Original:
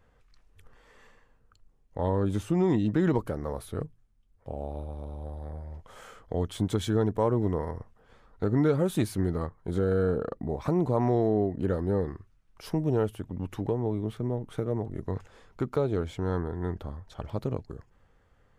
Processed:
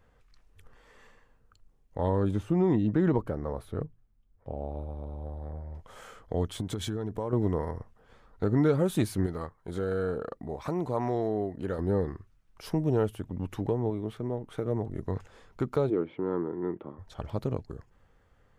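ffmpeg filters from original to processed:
-filter_complex "[0:a]asettb=1/sr,asplit=3[s0][s1][s2];[s0]atrim=end=2.314[s3];[s1]atrim=start=2.31:end=5.75,asetpts=PTS-STARTPTS,afade=t=in:d=0.004:c=qsin,afade=t=out:st=3.436:d=0.004:c=qsin,equalizer=f=9800:t=o:w=2.8:g=-11.5[s4];[s2]atrim=start=5.746[s5];[s3][s4]acrossfade=d=0.004:c1=hsin:c2=qsin[s6];[s6][s5]acrossfade=d=0.004:c1=qsin:c2=hsin,asettb=1/sr,asplit=3[s7][s8][s9];[s7]atrim=end=6.604[s10];[s8]atrim=start=6.6:end=7.33,asetpts=PTS-STARTPTS,afade=t=in:d=0.004:c=qsin,afade=t=out:st=0.726:d=0.004:c=qsin,acompressor=threshold=0.0447:ratio=12:attack=3.2:release=140:knee=1:detection=peak[s11];[s9]atrim=start=7.326[s12];[s10][s11]acrossfade=d=0.004:c1=hsin:c2=qsin[s13];[s13][s12]acrossfade=d=0.004:c1=qsin:c2=hsin,asettb=1/sr,asplit=3[s14][s15][s16];[s14]atrim=end=9.264[s17];[s15]atrim=start=9.26:end=11.79,asetpts=PTS-STARTPTS,afade=t=in:d=0.004:c=qsin,afade=t=out:st=2.526:d=0.004:c=qsin,lowshelf=f=480:g=-7.5[s18];[s16]atrim=start=11.786[s19];[s17][s18]acrossfade=d=0.004:c1=hsin:c2=qsin[s20];[s20][s19]acrossfade=d=0.004:c1=qsin:c2=hsin,asettb=1/sr,asplit=3[s21][s22][s23];[s21]atrim=end=13.904[s24];[s22]atrim=start=13.9:end=14.65,asetpts=PTS-STARTPTS,afade=t=in:d=0.004:c=qsin,afade=t=out:st=0.746:d=0.004:c=qsin,bass=f=250:g=-5,treble=f=4000:g=-3[s25];[s23]atrim=start=14.646[s26];[s24][s25]acrossfade=d=0.004:c1=hsin:c2=qsin[s27];[s27][s26]acrossfade=d=0.004:c1=qsin:c2=hsin,asplit=3[s28][s29][s30];[s28]afade=t=out:st=15.89:d=0.02[s31];[s29]highpass=f=160:w=0.5412,highpass=f=160:w=1.3066,equalizer=f=200:t=q:w=4:g=-4,equalizer=f=340:t=q:w=4:g=7,equalizer=f=710:t=q:w=4:g=-7,equalizer=f=1600:t=q:w=4:g=-9,lowpass=f=2400:w=0.5412,lowpass=f=2400:w=1.3066,afade=t=in:st=15.89:d=0.02,afade=t=out:st=16.98:d=0.02[s32];[s30]afade=t=in:st=16.98:d=0.02[s33];[s31][s32][s33]amix=inputs=3:normalize=0"

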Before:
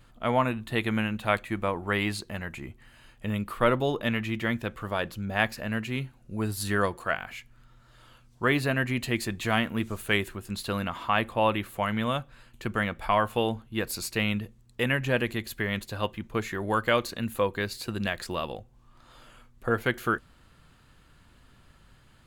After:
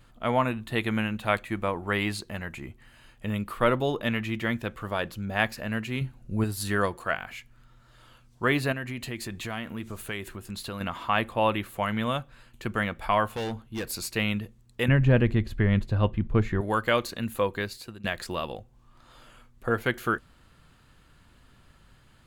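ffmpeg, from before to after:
-filter_complex "[0:a]asettb=1/sr,asplit=3[s0][s1][s2];[s0]atrim=end=6.014[s3];[s1]atrim=start=6.01:end=6.44,asetpts=PTS-STARTPTS,afade=t=in:d=0.004:c=qsin,afade=t=out:st=0.426:d=0.004:c=qsin,lowshelf=f=220:g=8.5[s4];[s2]atrim=start=6.436[s5];[s3][s4]acrossfade=d=0.004:c1=hsin:c2=qsin[s6];[s6][s5]acrossfade=d=0.004:c1=qsin:c2=hsin,asettb=1/sr,asplit=3[s7][s8][s9];[s7]atrim=end=8.724[s10];[s8]atrim=start=8.72:end=10.81,asetpts=PTS-STARTPTS,afade=t=in:d=0.004:c=qsin,afade=t=out:st=2.086:d=0.004:c=qsin,acompressor=threshold=0.0224:ratio=2.5:attack=3.2:release=140:knee=1:detection=peak[s11];[s9]atrim=start=10.806[s12];[s10][s11]acrossfade=d=0.004:c1=hsin:c2=qsin[s13];[s13][s12]acrossfade=d=0.004:c1=qsin:c2=hsin,asettb=1/sr,asplit=3[s14][s15][s16];[s14]atrim=end=13.314[s17];[s15]atrim=start=13.31:end=13.89,asetpts=PTS-STARTPTS,afade=t=in:d=0.004:c=qsin,afade=t=out:st=0.576:d=0.004:c=qsin,asoftclip=type=hard:threshold=0.0398[s18];[s16]atrim=start=13.886[s19];[s17][s18]acrossfade=d=0.004:c1=hsin:c2=qsin[s20];[s20][s19]acrossfade=d=0.004:c1=qsin:c2=hsin,asettb=1/sr,asplit=3[s21][s22][s23];[s21]atrim=end=14.884[s24];[s22]atrim=start=14.88:end=16.61,asetpts=PTS-STARTPTS,afade=t=in:d=0.004:c=qsin,afade=t=out:st=1.726:d=0.004:c=qsin,aemphasis=mode=reproduction:type=riaa[s25];[s23]atrim=start=16.606[s26];[s24][s25]acrossfade=d=0.004:c1=hsin:c2=qsin[s27];[s27][s26]acrossfade=d=0.004:c1=qsin:c2=hsin,asplit=2[s28][s29];[s28]atrim=end=18.04,asetpts=PTS-STARTPTS,afade=t=out:st=17.57:d=0.47:silence=0.105925[s30];[s29]atrim=start=18.04,asetpts=PTS-STARTPTS,afade=t=in:d=0.004:c=hsin:silence=0.105925[s31];[s30][s31]concat=n=2:v=0:a=1"

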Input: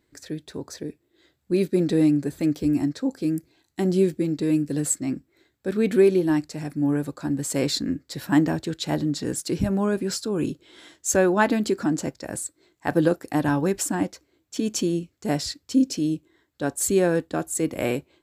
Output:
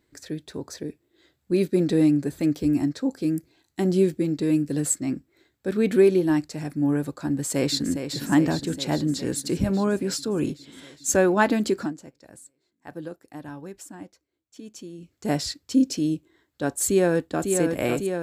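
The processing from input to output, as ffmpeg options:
-filter_complex "[0:a]asplit=2[s0][s1];[s1]afade=t=in:st=7.31:d=0.01,afade=t=out:st=8.04:d=0.01,aecho=0:1:410|820|1230|1640|2050|2460|2870|3280|3690|4100|4510|4920:0.375837|0.281878|0.211409|0.158556|0.118917|0.089188|0.066891|0.0501682|0.0376262|0.0282196|0.0211647|0.0158735[s2];[s0][s2]amix=inputs=2:normalize=0,asplit=2[s3][s4];[s4]afade=t=in:st=16.87:d=0.01,afade=t=out:st=17.51:d=0.01,aecho=0:1:550|1100|1650|2200|2750|3300|3850|4400|4950|5500|6050|6600:0.562341|0.421756|0.316317|0.237238|0.177928|0.133446|0.100085|0.0750635|0.0562976|0.0422232|0.0316674|0.0237506[s5];[s3][s5]amix=inputs=2:normalize=0,asplit=3[s6][s7][s8];[s6]atrim=end=11.94,asetpts=PTS-STARTPTS,afade=t=out:st=11.8:d=0.14:silence=0.158489[s9];[s7]atrim=start=11.94:end=14.98,asetpts=PTS-STARTPTS,volume=0.158[s10];[s8]atrim=start=14.98,asetpts=PTS-STARTPTS,afade=t=in:d=0.14:silence=0.158489[s11];[s9][s10][s11]concat=n=3:v=0:a=1"

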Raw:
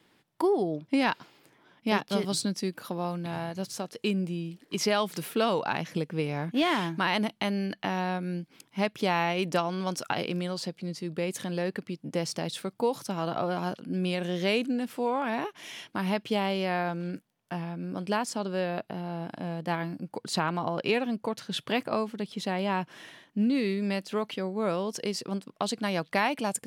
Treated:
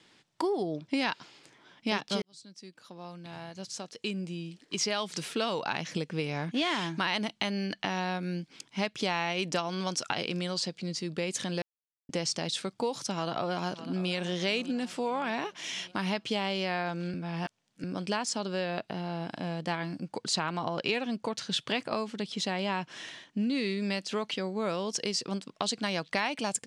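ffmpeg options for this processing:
-filter_complex "[0:a]asplit=2[s0][s1];[s1]afade=t=in:st=13.11:d=0.01,afade=t=out:st=14.11:d=0.01,aecho=0:1:600|1200|1800|2400|3000:0.16788|0.0839402|0.0419701|0.0209851|0.0104925[s2];[s0][s2]amix=inputs=2:normalize=0,asplit=6[s3][s4][s5][s6][s7][s8];[s3]atrim=end=2.22,asetpts=PTS-STARTPTS,afade=t=out:st=2.216:d=0.004:c=hsin[s9];[s4]atrim=start=2.22:end=11.62,asetpts=PTS-STARTPTS,afade=t=in:d=3.7,afade=t=out:st=9.396:d=0.004:c=hsin[s10];[s5]atrim=start=11.62:end=12.09,asetpts=PTS-STARTPTS,volume=0[s11];[s6]atrim=start=12.09:end=17.142,asetpts=PTS-STARTPTS,afade=t=in:d=0.004:c=hsin[s12];[s7]atrim=start=17.138:end=17.842,asetpts=PTS-STARTPTS,areverse[s13];[s8]atrim=start=17.838[s14];[s9][s10][s11][s12]concat=n=4:v=0:a=1[s15];[s15][s13]acrossfade=d=0.004:c1=hsin:c2=hsin[s16];[s16][s14]acrossfade=d=0.004:c1=hsin:c2=hsin,lowpass=f=7800:w=0.5412,lowpass=f=7800:w=1.3066,highshelf=f=2600:g=10.5,acompressor=threshold=0.0316:ratio=2"

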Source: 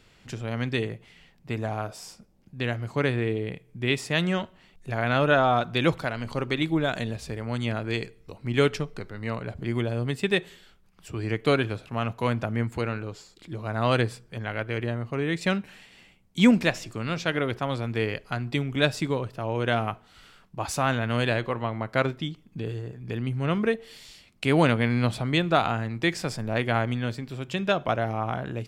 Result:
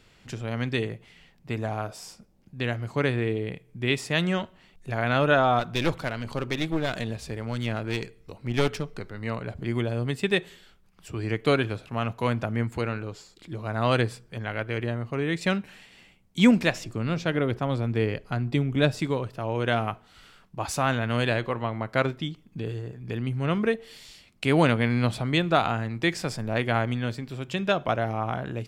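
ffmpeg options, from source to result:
-filter_complex "[0:a]asettb=1/sr,asplit=3[s0][s1][s2];[s0]atrim=end=5.594[s3];[s1]atrim=start=5.59:end=8.91,asetpts=PTS-STARTPTS,afade=t=in:d=0.004:c=qsin,afade=t=out:st=3.316:d=0.004:c=qsin,aeval=exprs='clip(val(0),-1,0.0237)':c=same[s4];[s2]atrim=start=8.906[s5];[s3][s4]acrossfade=d=0.004:c1=hsin:c2=qsin[s6];[s6][s5]acrossfade=d=0.004:c1=qsin:c2=hsin,asettb=1/sr,asplit=3[s7][s8][s9];[s7]atrim=end=16.844[s10];[s8]atrim=start=16.84:end=18.99,asetpts=PTS-STARTPTS,afade=t=in:d=0.004:c=qsin,afade=t=out:st=2.146:d=0.004:c=qsin,tiltshelf=f=660:g=4[s11];[s9]atrim=start=18.986[s12];[s10][s11]acrossfade=d=0.004:c1=hsin:c2=qsin[s13];[s13][s12]acrossfade=d=0.004:c1=qsin:c2=hsin"

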